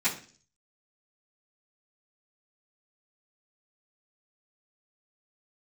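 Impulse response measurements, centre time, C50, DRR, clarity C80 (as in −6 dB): 19 ms, 10.5 dB, −16.0 dB, 15.0 dB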